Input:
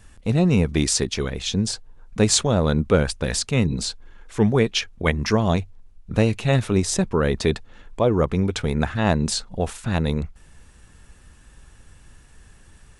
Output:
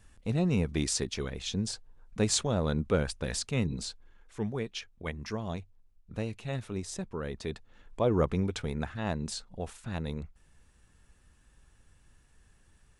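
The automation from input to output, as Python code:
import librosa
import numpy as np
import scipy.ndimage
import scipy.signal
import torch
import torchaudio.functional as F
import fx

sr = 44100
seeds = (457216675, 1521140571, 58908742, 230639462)

y = fx.gain(x, sr, db=fx.line((3.63, -9.5), (4.57, -16.0), (7.45, -16.0), (8.18, -6.0), (8.92, -13.0)))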